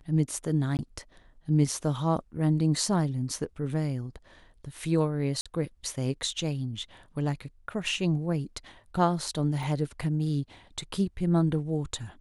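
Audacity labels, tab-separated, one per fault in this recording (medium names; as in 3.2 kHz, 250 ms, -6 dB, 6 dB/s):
0.770000	0.790000	dropout 19 ms
5.410000	5.460000	dropout 46 ms
9.630000	9.630000	dropout 2.5 ms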